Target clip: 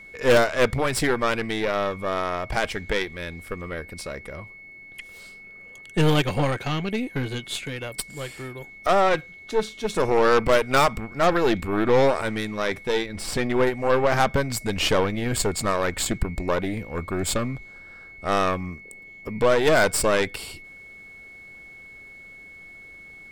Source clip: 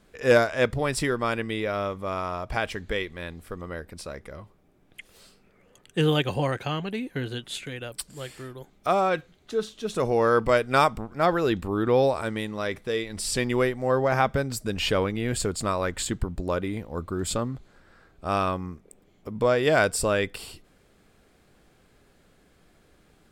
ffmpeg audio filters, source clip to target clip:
ffmpeg -i in.wav -filter_complex "[0:a]aeval=exprs='val(0)+0.00501*sin(2*PI*2200*n/s)':channel_layout=same,aeval=exprs='0.398*(cos(1*acos(clip(val(0)/0.398,-1,1)))-cos(1*PI/2))+0.0447*(cos(5*acos(clip(val(0)/0.398,-1,1)))-cos(5*PI/2))+0.0562*(cos(8*acos(clip(val(0)/0.398,-1,1)))-cos(8*PI/2))':channel_layout=same,asettb=1/sr,asplit=3[link_01][link_02][link_03];[link_01]atrim=end=13.064[link_04];[link_02]atrim=start=13.06:end=13.67,asetpts=PTS-STARTPTS,afade=type=in:duration=0.004:curve=qsin,afade=type=out:start_time=0.606:duration=0.004:curve=qsin,highshelf=frequency=3800:gain=-9.5[link_05];[link_03]atrim=start=13.666[link_06];[link_04][link_05]acrossfade=duration=0.004:curve1=hsin:curve2=qsin[link_07];[link_07][link_06]acrossfade=duration=0.004:curve1=qsin:curve2=hsin" out.wav

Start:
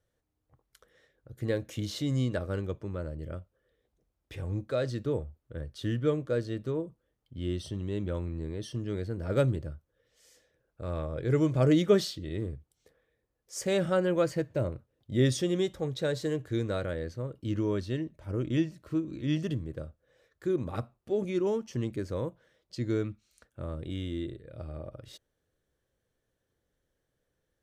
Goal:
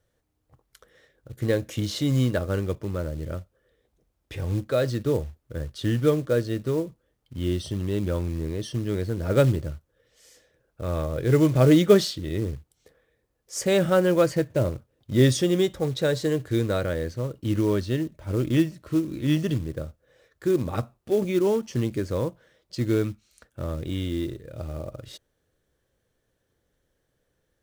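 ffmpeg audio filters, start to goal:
ffmpeg -i in.wav -af "acrusher=bits=6:mode=log:mix=0:aa=0.000001,volume=6.5dB" out.wav

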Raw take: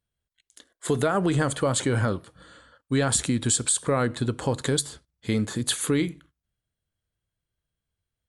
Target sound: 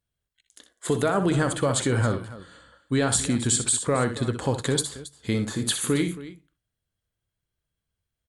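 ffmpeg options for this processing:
ffmpeg -i in.wav -af "aecho=1:1:62|79|273:0.335|0.106|0.158" out.wav

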